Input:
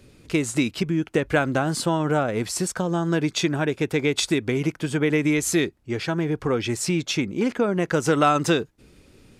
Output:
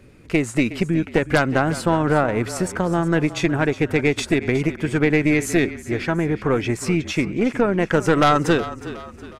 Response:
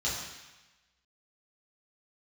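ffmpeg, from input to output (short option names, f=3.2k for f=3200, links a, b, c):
-filter_complex "[0:a]highshelf=f=2.8k:t=q:w=1.5:g=-6,aeval=exprs='0.562*(cos(1*acos(clip(val(0)/0.562,-1,1)))-cos(1*PI/2))+0.0447*(cos(5*acos(clip(val(0)/0.562,-1,1)))-cos(5*PI/2))+0.158*(cos(6*acos(clip(val(0)/0.562,-1,1)))-cos(6*PI/2))+0.0794*(cos(8*acos(clip(val(0)/0.562,-1,1)))-cos(8*PI/2))':c=same,asplit=5[a][b][c][d][e];[b]adelay=365,afreqshift=-31,volume=-14.5dB[f];[c]adelay=730,afreqshift=-62,volume=-21.4dB[g];[d]adelay=1095,afreqshift=-93,volume=-28.4dB[h];[e]adelay=1460,afreqshift=-124,volume=-35.3dB[i];[a][f][g][h][i]amix=inputs=5:normalize=0"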